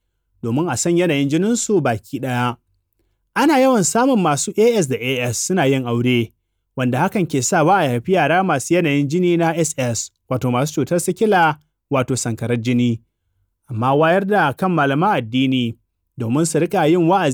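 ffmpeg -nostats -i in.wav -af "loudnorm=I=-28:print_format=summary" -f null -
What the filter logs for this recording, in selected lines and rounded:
Input Integrated:    -17.6 LUFS
Input True Peak:      -4.3 dBTP
Input LRA:             2.2 LU
Input Threshold:     -28.1 LUFS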